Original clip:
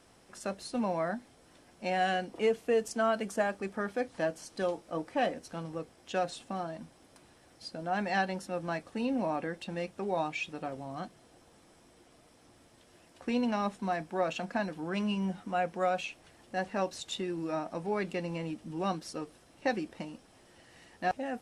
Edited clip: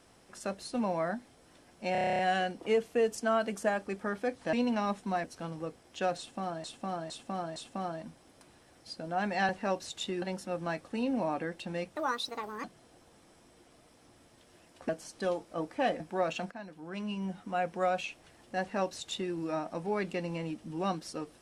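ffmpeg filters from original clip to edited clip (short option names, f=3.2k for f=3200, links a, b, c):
-filter_complex "[0:a]asplit=22[a][b][c][d][e][f][g][h][i][j][k][l][m][n][o][p][q][r][s][t][u][v];[a]atrim=end=1.952[w];[b]atrim=start=1.918:end=1.952[x];[c]atrim=start=1.918:end=1.952[y];[d]atrim=start=1.918:end=1.952[z];[e]atrim=start=1.918:end=1.952[aa];[f]atrim=start=1.918:end=1.952[ab];[g]atrim=start=1.918:end=1.952[ac];[h]atrim=start=1.918:end=1.952[ad];[i]atrim=start=1.918:end=1.952[ae];[j]atrim=start=1.918:end=4.262[af];[k]atrim=start=13.288:end=14.002[ag];[l]atrim=start=5.368:end=6.772[ah];[m]atrim=start=6.308:end=6.772[ai];[n]atrim=start=6.308:end=6.772[aj];[o]atrim=start=6.308:end=8.242[ak];[p]atrim=start=16.598:end=17.332[al];[q]atrim=start=8.238:end=9.984[am];[r]atrim=start=9.98:end=11.04,asetpts=PTS-STARTPTS,asetrate=68796,aresample=44100,atrim=end_sample=29965,asetpts=PTS-STARTPTS[an];[s]atrim=start=11.036:end=13.292[ao];[t]atrim=start=4.258:end=5.372[ap];[u]atrim=start=13.998:end=14.51,asetpts=PTS-STARTPTS,afade=t=out:st=0.508:d=0.004:c=hsin:silence=0.188365[aq];[v]atrim=start=14.51,asetpts=PTS-STARTPTS,afade=t=in:d=1.25:silence=0.188365[ar];[w][x]acrossfade=d=0.004:c1=hsin:c2=hsin[as];[as][y]acrossfade=d=0.004:c1=hsin:c2=hsin[at];[at][z]acrossfade=d=0.004:c1=hsin:c2=hsin[au];[au][aa]acrossfade=d=0.004:c1=hsin:c2=hsin[av];[av][ab]acrossfade=d=0.004:c1=hsin:c2=hsin[aw];[aw][ac]acrossfade=d=0.004:c1=hsin:c2=hsin[ax];[ax][ad]acrossfade=d=0.004:c1=hsin:c2=hsin[ay];[ay][ae]acrossfade=d=0.004:c1=hsin:c2=hsin[az];[az][af]acrossfade=d=0.004:c1=hsin:c2=hsin[ba];[ba][ag]acrossfade=d=0.004:c1=hsin:c2=hsin[bb];[bb][ah]acrossfade=d=0.004:c1=hsin:c2=hsin[bc];[bc][ai]acrossfade=d=0.004:c1=hsin:c2=hsin[bd];[bd][aj]acrossfade=d=0.004:c1=hsin:c2=hsin[be];[be][ak]acrossfade=d=0.004:c1=hsin:c2=hsin[bf];[bf][al]acrossfade=d=0.004:c1=hsin:c2=hsin[bg];[bg][am]acrossfade=d=0.004:c1=hsin:c2=hsin[bh];[bh][an]acrossfade=d=0.004:c1=hsin:c2=hsin[bi];[bi][ao]acrossfade=d=0.004:c1=hsin:c2=hsin[bj];[bj][ap]acrossfade=d=0.004:c1=hsin:c2=hsin[bk];[aq][ar]concat=n=2:v=0:a=1[bl];[bk][bl]acrossfade=d=0.004:c1=hsin:c2=hsin"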